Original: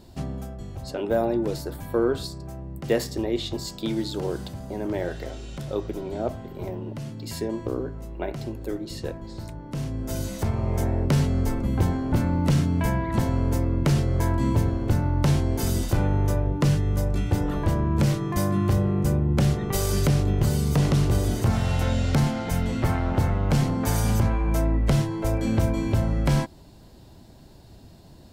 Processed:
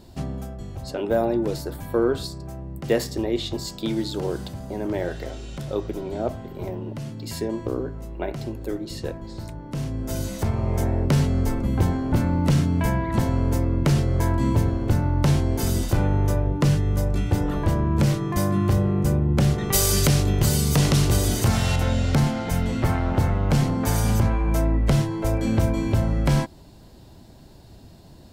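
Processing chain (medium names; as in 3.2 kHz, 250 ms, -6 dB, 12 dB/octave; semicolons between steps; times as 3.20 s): 19.58–21.76 s: treble shelf 2.2 kHz +9.5 dB; trim +1.5 dB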